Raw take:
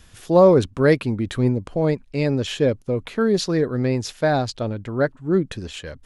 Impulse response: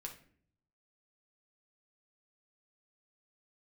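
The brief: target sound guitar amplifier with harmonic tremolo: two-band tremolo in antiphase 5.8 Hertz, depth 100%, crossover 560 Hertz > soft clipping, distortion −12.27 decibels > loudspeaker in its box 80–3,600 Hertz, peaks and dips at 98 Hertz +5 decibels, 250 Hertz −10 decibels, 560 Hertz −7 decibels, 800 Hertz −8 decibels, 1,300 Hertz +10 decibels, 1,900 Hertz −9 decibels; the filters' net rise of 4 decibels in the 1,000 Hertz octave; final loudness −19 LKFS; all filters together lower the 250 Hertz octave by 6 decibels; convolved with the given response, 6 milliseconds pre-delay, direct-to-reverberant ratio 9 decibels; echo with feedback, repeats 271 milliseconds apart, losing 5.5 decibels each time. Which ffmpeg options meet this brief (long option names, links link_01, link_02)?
-filter_complex "[0:a]equalizer=frequency=250:width_type=o:gain=-4.5,equalizer=frequency=1000:width_type=o:gain=6,aecho=1:1:271|542|813|1084|1355|1626|1897:0.531|0.281|0.149|0.079|0.0419|0.0222|0.0118,asplit=2[link_01][link_02];[1:a]atrim=start_sample=2205,adelay=6[link_03];[link_02][link_03]afir=irnorm=-1:irlink=0,volume=-5.5dB[link_04];[link_01][link_04]amix=inputs=2:normalize=0,acrossover=split=560[link_05][link_06];[link_05]aeval=exprs='val(0)*(1-1/2+1/2*cos(2*PI*5.8*n/s))':channel_layout=same[link_07];[link_06]aeval=exprs='val(0)*(1-1/2-1/2*cos(2*PI*5.8*n/s))':channel_layout=same[link_08];[link_07][link_08]amix=inputs=2:normalize=0,asoftclip=threshold=-17dB,highpass=80,equalizer=frequency=98:width_type=q:width=4:gain=5,equalizer=frequency=250:width_type=q:width=4:gain=-10,equalizer=frequency=560:width_type=q:width=4:gain=-7,equalizer=frequency=800:width_type=q:width=4:gain=-8,equalizer=frequency=1300:width_type=q:width=4:gain=10,equalizer=frequency=1900:width_type=q:width=4:gain=-9,lowpass=frequency=3600:width=0.5412,lowpass=frequency=3600:width=1.3066,volume=9.5dB"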